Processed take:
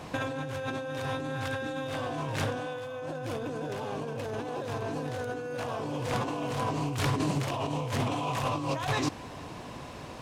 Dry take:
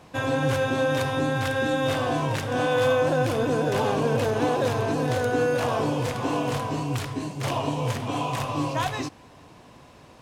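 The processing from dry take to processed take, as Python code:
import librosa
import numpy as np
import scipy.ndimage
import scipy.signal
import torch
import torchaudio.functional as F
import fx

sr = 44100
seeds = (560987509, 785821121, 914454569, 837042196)

y = fx.over_compress(x, sr, threshold_db=-33.0, ratio=-1.0)
y = fx.doppler_dist(y, sr, depth_ms=0.18)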